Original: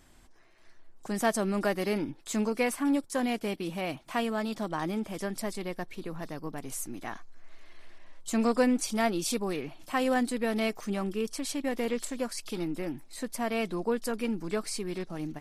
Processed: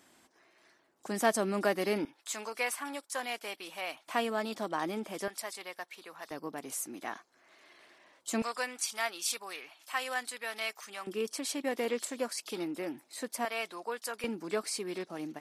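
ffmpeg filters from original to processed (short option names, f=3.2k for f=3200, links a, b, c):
-af "asetnsamples=n=441:p=0,asendcmd='2.05 highpass f 800;4.08 highpass f 300;5.28 highpass f 830;6.31 highpass f 290;8.42 highpass f 1100;11.07 highpass f 320;13.45 highpass f 780;14.24 highpass f 310',highpass=240"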